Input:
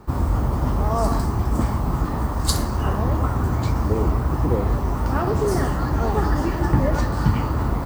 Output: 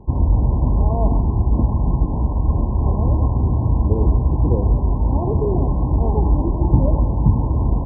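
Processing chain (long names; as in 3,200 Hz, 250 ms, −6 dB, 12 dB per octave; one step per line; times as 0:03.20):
linear-phase brick-wall low-pass 1,100 Hz
spectral tilt −2 dB per octave
level −2.5 dB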